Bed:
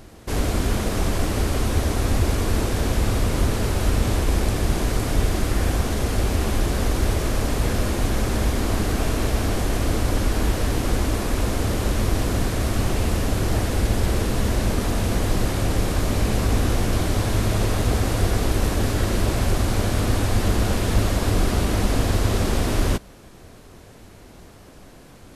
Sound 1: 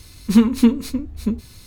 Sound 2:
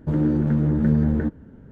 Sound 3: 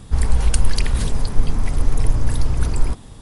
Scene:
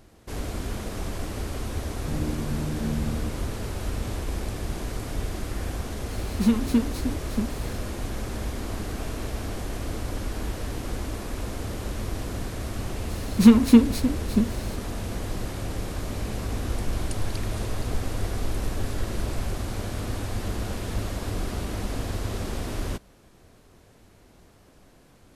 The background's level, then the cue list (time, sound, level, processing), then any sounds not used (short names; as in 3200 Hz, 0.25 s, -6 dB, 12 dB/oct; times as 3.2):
bed -9.5 dB
2 add 2 -11 dB
6.11 add 1 -7 dB + three-band squash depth 40%
13.1 add 1
16.57 add 3 -15.5 dB